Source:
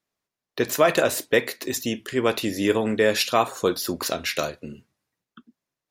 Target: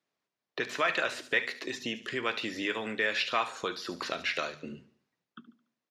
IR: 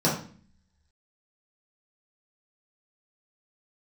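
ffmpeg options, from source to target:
-filter_complex "[0:a]highpass=130,bandreject=f=50:t=h:w=6,bandreject=f=100:t=h:w=6,bandreject=f=150:t=h:w=6,bandreject=f=200:t=h:w=6,bandreject=f=250:t=h:w=6,acrossover=split=1200[a][b];[a]acompressor=threshold=-36dB:ratio=4[c];[b]lowpass=5.1k[d];[c][d]amix=inputs=2:normalize=0,aecho=1:1:72|144|216|288:0.133|0.0613|0.0282|0.013,asplit=2[e][f];[f]asoftclip=type=tanh:threshold=-19.5dB,volume=-7dB[g];[e][g]amix=inputs=2:normalize=0,acrossover=split=3600[h][i];[i]acompressor=threshold=-42dB:ratio=4:attack=1:release=60[j];[h][j]amix=inputs=2:normalize=0,volume=-3.5dB"

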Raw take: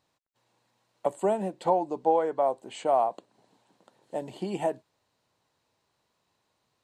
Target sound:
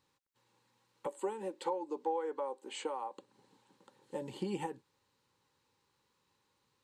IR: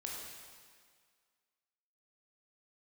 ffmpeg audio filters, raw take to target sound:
-filter_complex "[0:a]asettb=1/sr,asplit=3[a][b][c];[a]atrim=end=1.074[d];[b]atrim=start=1.07:end=3.17,asetpts=PTS-STARTPTS,afade=t=in:d=0.004:c=qsin,afade=t=out:st=2.096:d=0.004:c=qsin,highpass=f=270:w=0.5412,highpass=f=270:w=1.3066[e];[c]atrim=start=3.166[f];[d][e]acrossfade=d=0.004:c1=hsin:c2=qsin[g];[g][f]acrossfade=d=0.004:c1=qsin:c2=hsin,acompressor=threshold=-32dB:ratio=3,asuperstop=centerf=670:order=12:qfactor=3.5,volume=-1.5dB"

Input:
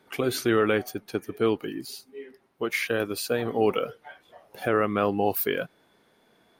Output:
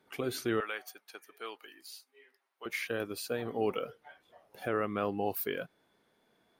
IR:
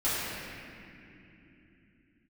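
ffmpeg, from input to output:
-filter_complex "[0:a]asettb=1/sr,asplit=3[a][b][c];[a]atrim=end=0.604[d];[b]atrim=start=0.6:end=2.66,asetpts=PTS-STARTPTS,afade=t=in:d=0.004:c=qsin,afade=t=out:st=2.056:d=0.004:c=qsin,highpass=940[e];[c]atrim=start=2.656[f];[d][e]acrossfade=d=0.004:c1=hsin:c2=qsin[g];[g][f]acrossfade=d=0.004:c1=qsin:c2=hsin,volume=-8.5dB"

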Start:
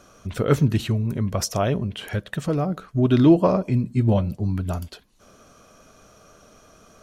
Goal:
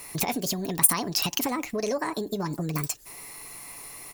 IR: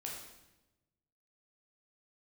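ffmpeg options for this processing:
-filter_complex "[0:a]acompressor=threshold=-27dB:ratio=8,asplit=2[a][b];[b]adelay=12,volume=-11dB[c];[a][c]amix=inputs=2:normalize=0,asetrate=74970,aresample=44100,crystalizer=i=4.5:c=0"

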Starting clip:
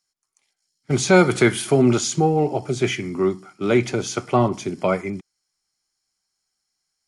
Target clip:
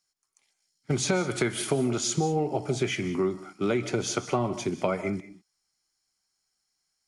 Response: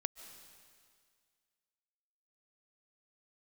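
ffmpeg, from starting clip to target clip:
-filter_complex "[0:a]acompressor=threshold=-21dB:ratio=12[a];[1:a]atrim=start_sample=2205,afade=t=out:st=0.26:d=0.01,atrim=end_sample=11907[b];[a][b]afir=irnorm=-1:irlink=0"

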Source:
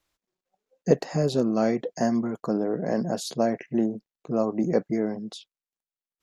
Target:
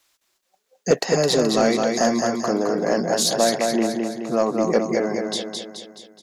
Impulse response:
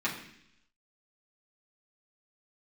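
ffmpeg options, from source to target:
-filter_complex "[0:a]highshelf=f=4.3k:g=9.5,aecho=1:1:213|426|639|852|1065|1278|1491:0.596|0.304|0.155|0.079|0.0403|0.0206|0.0105,asplit=2[a][b];[b]highpass=f=720:p=1,volume=15dB,asoftclip=type=tanh:threshold=-4.5dB[c];[a][c]amix=inputs=2:normalize=0,lowpass=f=8k:p=1,volume=-6dB"

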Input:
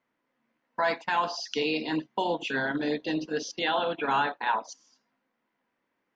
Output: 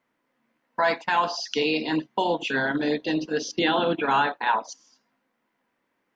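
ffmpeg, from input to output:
-filter_complex "[0:a]asettb=1/sr,asplit=3[a][b][c];[a]atrim=end=3.434[d];[b]atrim=start=3.43:end=4.02,asetpts=PTS-STARTPTS,afade=t=in:d=0.004:c=qsin,afade=t=out:st=0.586:d=0.004:c=qsin,lowshelf=f=460:t=q:w=1.5:g=6.5[e];[c]atrim=start=4.016[f];[d][e]acrossfade=d=0.004:c1=hsin:c2=qsin[g];[g][f]acrossfade=d=0.004:c1=qsin:c2=hsin,volume=4dB"

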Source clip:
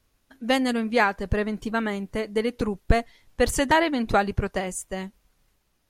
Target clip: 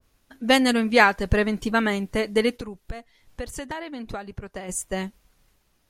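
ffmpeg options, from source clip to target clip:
-filter_complex "[0:a]asplit=3[a][b][c];[a]afade=t=out:st=2.56:d=0.02[d];[b]acompressor=threshold=-36dB:ratio=5,afade=t=in:st=2.56:d=0.02,afade=t=out:st=4.68:d=0.02[e];[c]afade=t=in:st=4.68:d=0.02[f];[d][e][f]amix=inputs=3:normalize=0,adynamicequalizer=threshold=0.02:dfrequency=1600:dqfactor=0.7:tfrequency=1600:tqfactor=0.7:attack=5:release=100:ratio=0.375:range=2:mode=boostabove:tftype=highshelf,volume=3.5dB"

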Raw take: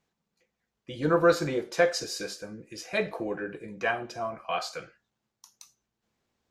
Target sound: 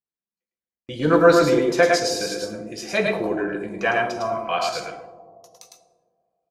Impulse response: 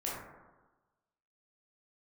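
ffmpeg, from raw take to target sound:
-filter_complex "[0:a]agate=range=-30dB:threshold=-53dB:ratio=16:detection=peak,aecho=1:1:104|107:0.335|0.668,asplit=2[a][b];[1:a]atrim=start_sample=2205,asetrate=23373,aresample=44100[c];[b][c]afir=irnorm=-1:irlink=0,volume=-15.5dB[d];[a][d]amix=inputs=2:normalize=0,volume=4.5dB"

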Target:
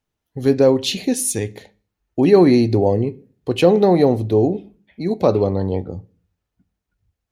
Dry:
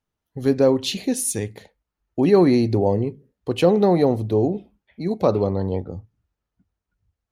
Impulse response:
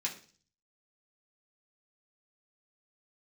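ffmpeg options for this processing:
-filter_complex "[0:a]equalizer=f=1.2k:t=o:w=0.77:g=-3,asplit=2[a][b];[1:a]atrim=start_sample=2205,lowpass=6.3k[c];[b][c]afir=irnorm=-1:irlink=0,volume=-15dB[d];[a][d]amix=inputs=2:normalize=0,volume=3dB"

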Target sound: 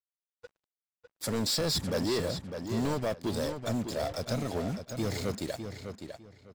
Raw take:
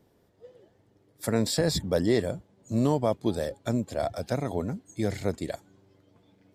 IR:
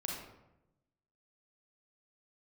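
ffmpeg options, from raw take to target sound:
-filter_complex "[0:a]equalizer=f=4.8k:w=1.2:g=8,bandreject=f=700:w=21,acrusher=bits=6:mix=0:aa=0.5,asoftclip=type=tanh:threshold=-25.5dB,asplit=2[a][b];[b]adelay=603,lowpass=f=4.5k:p=1,volume=-7.5dB,asplit=2[c][d];[d]adelay=603,lowpass=f=4.5k:p=1,volume=0.23,asplit=2[e][f];[f]adelay=603,lowpass=f=4.5k:p=1,volume=0.23[g];[c][e][g]amix=inputs=3:normalize=0[h];[a][h]amix=inputs=2:normalize=0"

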